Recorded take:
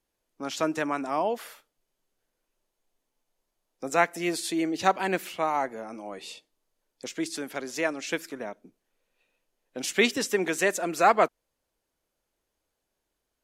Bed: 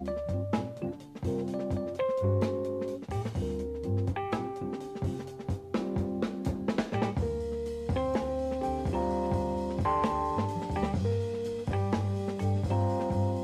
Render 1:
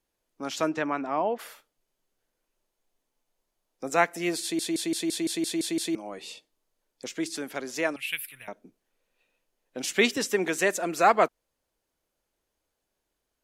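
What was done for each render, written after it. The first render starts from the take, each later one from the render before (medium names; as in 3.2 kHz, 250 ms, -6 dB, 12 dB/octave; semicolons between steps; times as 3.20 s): 0.69–1.38 s: low-pass 4.9 kHz -> 2.1 kHz; 4.42 s: stutter in place 0.17 s, 9 plays; 7.96–8.48 s: FFT filter 130 Hz 0 dB, 200 Hz -23 dB, 430 Hz -27 dB, 1 kHz -16 dB, 1.6 kHz -7 dB, 2.7 kHz +9 dB, 6.4 kHz -19 dB, 10 kHz +13 dB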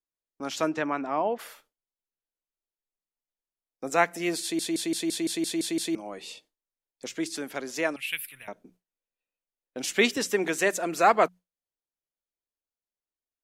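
hum notches 60/120/180 Hz; gate with hold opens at -47 dBFS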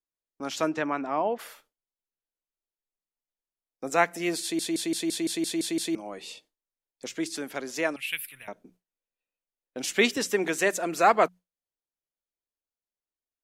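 no audible change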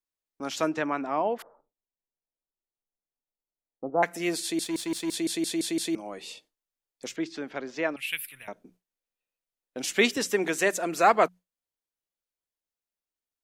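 1.42–4.03 s: steep low-pass 970 Hz; 4.64–5.14 s: power-law waveshaper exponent 1.4; 7.16–7.97 s: distance through air 180 m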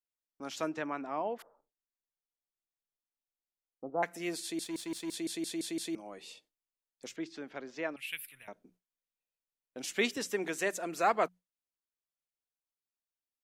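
trim -8 dB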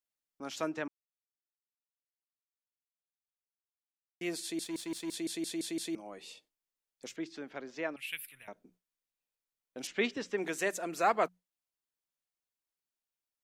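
0.88–4.21 s: mute; 9.87–10.38 s: distance through air 150 m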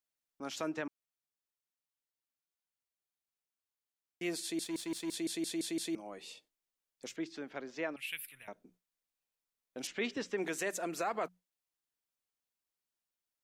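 peak limiter -25 dBFS, peak gain reduction 9.5 dB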